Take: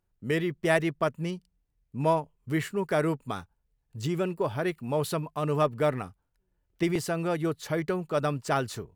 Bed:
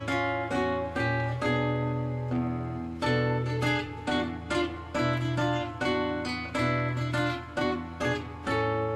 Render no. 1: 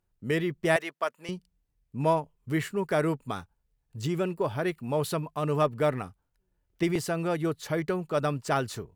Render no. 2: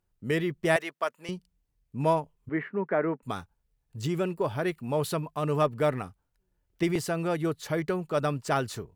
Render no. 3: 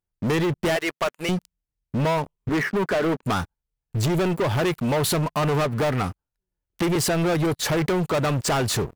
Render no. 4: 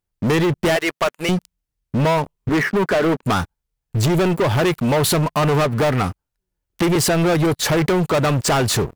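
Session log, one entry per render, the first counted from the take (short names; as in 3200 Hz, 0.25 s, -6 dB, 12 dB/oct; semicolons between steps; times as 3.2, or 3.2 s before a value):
0.76–1.29 HPF 650 Hz
2.49–3.23 Chebyshev band-pass 190–2000 Hz, order 3
compressor 6:1, threshold -28 dBFS, peak gain reduction 9.5 dB; sample leveller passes 5
gain +5 dB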